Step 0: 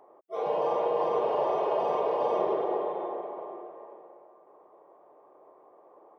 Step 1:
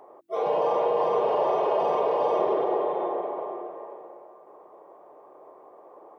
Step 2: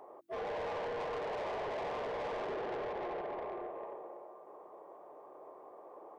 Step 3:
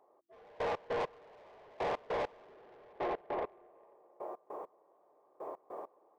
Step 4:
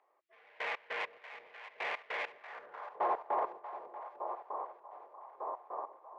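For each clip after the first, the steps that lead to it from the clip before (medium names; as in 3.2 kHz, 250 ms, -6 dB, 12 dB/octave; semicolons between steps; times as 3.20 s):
de-hum 47.93 Hz, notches 7; in parallel at +1 dB: peak limiter -27 dBFS, peak gain reduction 11 dB
in parallel at 0 dB: compression, threshold -33 dBFS, peak gain reduction 12.5 dB; on the sum: saturation -27 dBFS, distortion -8 dB; trim -9 dB
compression 2:1, threshold -46 dBFS, peak gain reduction 5 dB; trance gate "....x.x." 100 bpm -24 dB; trim +9.5 dB
tracing distortion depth 0.042 ms; two-band feedback delay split 590 Hz, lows 424 ms, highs 636 ms, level -12.5 dB; band-pass sweep 2.2 kHz -> 990 Hz, 2.32–2.99 s; trim +9.5 dB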